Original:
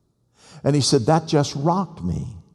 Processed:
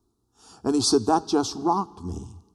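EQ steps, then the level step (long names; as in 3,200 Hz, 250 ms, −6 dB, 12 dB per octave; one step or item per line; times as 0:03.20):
phaser with its sweep stopped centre 560 Hz, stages 6
0.0 dB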